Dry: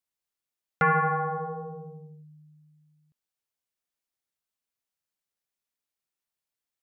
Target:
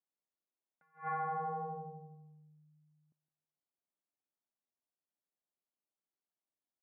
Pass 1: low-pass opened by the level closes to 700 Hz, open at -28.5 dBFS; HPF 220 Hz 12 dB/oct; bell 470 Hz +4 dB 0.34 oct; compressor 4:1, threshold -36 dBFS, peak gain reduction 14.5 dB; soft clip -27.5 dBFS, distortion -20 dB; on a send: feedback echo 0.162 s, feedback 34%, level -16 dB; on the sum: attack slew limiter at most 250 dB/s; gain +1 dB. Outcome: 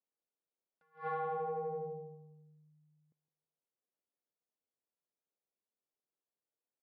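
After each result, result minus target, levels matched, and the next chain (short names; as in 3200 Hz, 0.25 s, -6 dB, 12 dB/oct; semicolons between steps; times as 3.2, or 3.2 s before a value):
soft clip: distortion +19 dB; 500 Hz band +8.0 dB
low-pass opened by the level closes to 700 Hz, open at -28.5 dBFS; HPF 220 Hz 12 dB/oct; bell 470 Hz +4 dB 0.34 oct; compressor 4:1, threshold -36 dBFS, peak gain reduction 14.5 dB; soft clip -15.5 dBFS, distortion -38 dB; on a send: feedback echo 0.162 s, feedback 34%, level -16 dB; on the sum: attack slew limiter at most 250 dB/s; gain +1 dB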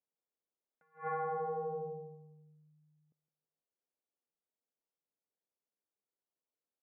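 500 Hz band +8.0 dB
low-pass opened by the level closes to 700 Hz, open at -28.5 dBFS; HPF 220 Hz 12 dB/oct; bell 470 Hz -7 dB 0.34 oct; compressor 4:1, threshold -36 dBFS, peak gain reduction 13.5 dB; soft clip -15.5 dBFS, distortion -38 dB; on a send: feedback echo 0.162 s, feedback 34%, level -16 dB; on the sum: attack slew limiter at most 250 dB/s; gain +1 dB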